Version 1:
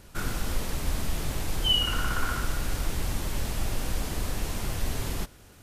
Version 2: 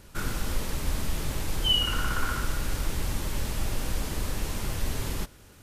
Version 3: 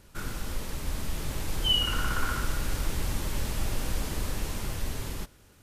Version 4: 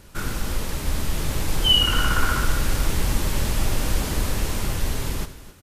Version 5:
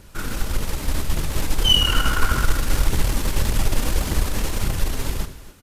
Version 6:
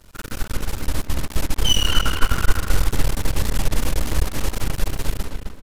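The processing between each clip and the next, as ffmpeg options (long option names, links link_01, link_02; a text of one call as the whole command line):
ffmpeg -i in.wav -af "bandreject=frequency=710:width=12" out.wav
ffmpeg -i in.wav -af "dynaudnorm=framelen=290:gausssize=9:maxgain=4dB,volume=-4.5dB" out.wav
ffmpeg -i in.wav -af "aecho=1:1:73|264:0.2|0.168,volume=7.5dB" out.wav
ffmpeg -i in.wav -af "aphaser=in_gain=1:out_gain=1:delay=4.5:decay=0.28:speed=1.7:type=triangular,aeval=exprs='0.668*(cos(1*acos(clip(val(0)/0.668,-1,1)))-cos(1*PI/2))+0.0422*(cos(6*acos(clip(val(0)/0.668,-1,1)))-cos(6*PI/2))':channel_layout=same" out.wav
ffmpeg -i in.wav -filter_complex "[0:a]aeval=exprs='max(val(0),0)':channel_layout=same,asplit=2[link_01][link_02];[link_02]adelay=260,lowpass=frequency=2800:poles=1,volume=-4.5dB,asplit=2[link_03][link_04];[link_04]adelay=260,lowpass=frequency=2800:poles=1,volume=0.26,asplit=2[link_05][link_06];[link_06]adelay=260,lowpass=frequency=2800:poles=1,volume=0.26,asplit=2[link_07][link_08];[link_08]adelay=260,lowpass=frequency=2800:poles=1,volume=0.26[link_09];[link_01][link_03][link_05][link_07][link_09]amix=inputs=5:normalize=0" out.wav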